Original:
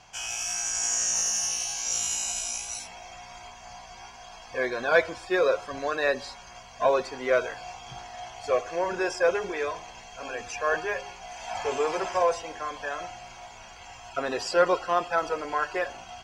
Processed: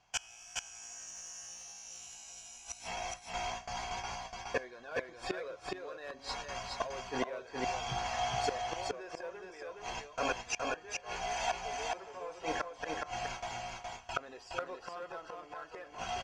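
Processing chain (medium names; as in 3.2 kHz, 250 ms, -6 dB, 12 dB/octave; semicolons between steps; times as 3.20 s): gate with hold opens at -34 dBFS; treble shelf 11 kHz -10.5 dB; in parallel at -11.5 dB: wavefolder -21.5 dBFS; on the sum: inverted gate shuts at -24 dBFS, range -25 dB; delay 418 ms -3 dB; trim +3 dB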